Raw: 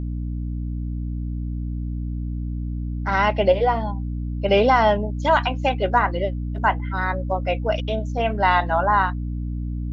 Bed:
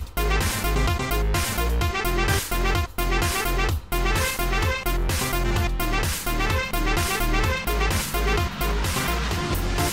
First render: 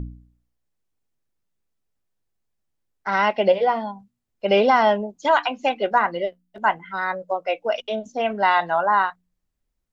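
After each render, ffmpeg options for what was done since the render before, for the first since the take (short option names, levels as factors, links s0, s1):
-af "bandreject=f=60:t=h:w=4,bandreject=f=120:t=h:w=4,bandreject=f=180:t=h:w=4,bandreject=f=240:t=h:w=4,bandreject=f=300:t=h:w=4"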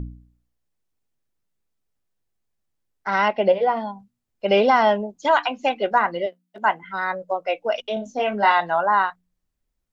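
-filter_complex "[0:a]asettb=1/sr,asplit=3[s0][s1][s2];[s0]atrim=end=3.284[s3];[s1]atrim=start=3.28:end=3.77,asetpts=PTS-STARTPTS,afade=t=in:d=0.004:c=qsin,afade=t=out:st=0.486:d=0.004:c=qsin,highshelf=f=3200:g=-8.5[s4];[s2]atrim=start=3.766[s5];[s3][s4]acrossfade=d=0.004:c1=hsin:c2=qsin[s6];[s6][s5]acrossfade=d=0.004:c1=qsin:c2=hsin,asettb=1/sr,asplit=3[s7][s8][s9];[s7]atrim=end=6.264[s10];[s8]atrim=start=6.26:end=6.83,asetpts=PTS-STARTPTS,afade=t=in:d=0.004:c=qsin,afade=t=out:st=0.566:d=0.004:c=qsin,highpass=180[s11];[s9]atrim=start=6.826[s12];[s10][s11]acrossfade=d=0.004:c1=hsin:c2=qsin[s13];[s13][s12]acrossfade=d=0.004:c1=qsin:c2=hsin,asettb=1/sr,asplit=3[s14][s15][s16];[s14]atrim=end=7.944[s17];[s15]atrim=start=7.94:end=8.52,asetpts=PTS-STARTPTS,afade=t=in:d=0.004:c=qsin,afade=t=out:st=0.576:d=0.004:c=qsin,asplit=2[s18][s19];[s19]adelay=24,volume=0.631[s20];[s18][s20]amix=inputs=2:normalize=0,atrim=end_sample=25578[s21];[s16]atrim=start=8.516[s22];[s17][s21]acrossfade=d=0.004:c1=hsin:c2=qsin[s23];[s23][s22]acrossfade=d=0.004:c1=qsin:c2=hsin"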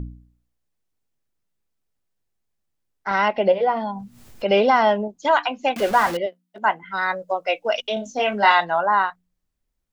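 -filter_complex "[0:a]asettb=1/sr,asplit=3[s0][s1][s2];[s0]atrim=end=3.114[s3];[s1]atrim=start=3.11:end=5.08,asetpts=PTS-STARTPTS,afade=t=in:d=0.004:c=qsin,afade=t=out:st=1.966:d=0.004:c=qsin,acompressor=mode=upward:threshold=0.112:ratio=2.5:attack=3.2:release=140:knee=2.83:detection=peak[s4];[s2]atrim=start=5.076[s5];[s3][s4]acrossfade=d=0.004:c1=hsin:c2=qsin[s6];[s6][s5]acrossfade=d=0.004:c1=qsin:c2=hsin,asettb=1/sr,asplit=3[s7][s8][s9];[s7]atrim=end=5.764[s10];[s8]atrim=start=5.76:end=6.17,asetpts=PTS-STARTPTS,afade=t=in:d=0.004:c=qsin,afade=t=out:st=0.406:d=0.004:c=qsin,aeval=exprs='val(0)+0.5*0.0596*sgn(val(0))':c=same[s11];[s9]atrim=start=6.166[s12];[s10][s11]acrossfade=d=0.004:c1=hsin:c2=qsin[s13];[s13][s12]acrossfade=d=0.004:c1=qsin:c2=hsin,asettb=1/sr,asplit=3[s14][s15][s16];[s14]atrim=end=6.924[s17];[s15]atrim=start=6.92:end=8.65,asetpts=PTS-STARTPTS,afade=t=in:d=0.004:c=qsin,afade=t=out:st=1.726:d=0.004:c=qsin,highshelf=f=2200:g=8.5[s18];[s16]atrim=start=8.646[s19];[s17][s18]acrossfade=d=0.004:c1=hsin:c2=qsin[s20];[s20][s19]acrossfade=d=0.004:c1=qsin:c2=hsin"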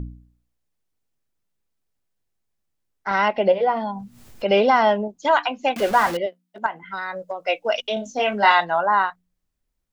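-filter_complex "[0:a]asettb=1/sr,asplit=3[s0][s1][s2];[s0]atrim=end=6.664[s3];[s1]atrim=start=6.66:end=7.45,asetpts=PTS-STARTPTS,afade=t=in:d=0.004:c=qsin,afade=t=out:st=0.786:d=0.004:c=qsin,acompressor=threshold=0.0631:ratio=6:attack=3.2:release=140:knee=1:detection=peak[s4];[s2]atrim=start=7.446[s5];[s3][s4]acrossfade=d=0.004:c1=hsin:c2=qsin[s6];[s6][s5]acrossfade=d=0.004:c1=qsin:c2=hsin"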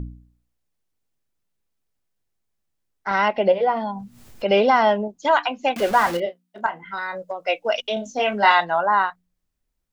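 -filter_complex "[0:a]asettb=1/sr,asplit=3[s0][s1][s2];[s0]atrim=end=6.114[s3];[s1]atrim=start=6.11:end=7.18,asetpts=PTS-STARTPTS,afade=t=in:d=0.004:c=qsin,afade=t=out:st=1.066:d=0.004:c=qsin,asplit=2[s4][s5];[s5]adelay=29,volume=0.335[s6];[s4][s6]amix=inputs=2:normalize=0,atrim=end_sample=47187[s7];[s2]atrim=start=7.176[s8];[s3][s7]acrossfade=d=0.004:c1=hsin:c2=qsin[s9];[s9][s8]acrossfade=d=0.004:c1=qsin:c2=hsin"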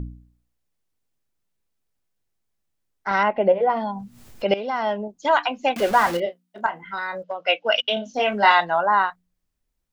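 -filter_complex "[0:a]asettb=1/sr,asplit=3[s0][s1][s2];[s0]atrim=end=3.234[s3];[s1]atrim=start=3.23:end=3.7,asetpts=PTS-STARTPTS,afade=t=in:d=0.004:c=qsin,afade=t=out:st=0.466:d=0.004:c=qsin,lowpass=1900[s4];[s2]atrim=start=3.696[s5];[s3][s4]acrossfade=d=0.004:c1=hsin:c2=qsin[s6];[s6][s5]acrossfade=d=0.004:c1=qsin:c2=hsin,asettb=1/sr,asplit=3[s7][s8][s9];[s7]atrim=end=7.234[s10];[s8]atrim=start=7.23:end=8.14,asetpts=PTS-STARTPTS,afade=t=in:d=0.004:c=qsin,afade=t=out:st=0.906:d=0.004:c=qsin,highpass=140,equalizer=f=380:t=q:w=4:g=-3,equalizer=f=1500:t=q:w=4:g=7,equalizer=f=3000:t=q:w=4:g=9,lowpass=f=5200:w=0.5412,lowpass=f=5200:w=1.3066[s11];[s9]atrim=start=8.136[s12];[s10][s11]acrossfade=d=0.004:c1=hsin:c2=qsin[s13];[s13][s12]acrossfade=d=0.004:c1=qsin:c2=hsin,asplit=2[s14][s15];[s14]atrim=end=4.54,asetpts=PTS-STARTPTS,afade=t=out:st=4.536:d=0.004:c=hsin:silence=0.158489[s16];[s15]atrim=start=4.54,asetpts=PTS-STARTPTS,afade=t=in:d=0.88:silence=0.158489[s17];[s16][s17]concat=n=2:v=0:a=1"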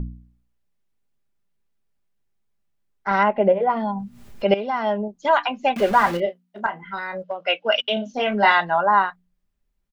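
-af "bass=f=250:g=3,treble=f=4000:g=-6,aecho=1:1:5:0.35"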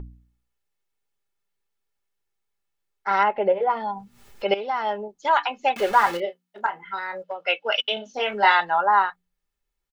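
-af "lowshelf=f=370:g=-11.5,aecho=1:1:2.3:0.42"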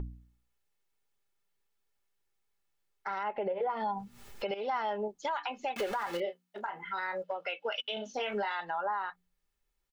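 -af "acompressor=threshold=0.0708:ratio=6,alimiter=level_in=1.12:limit=0.0631:level=0:latency=1:release=127,volume=0.891"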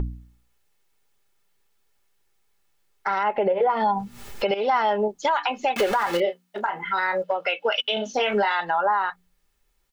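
-af "volume=3.76"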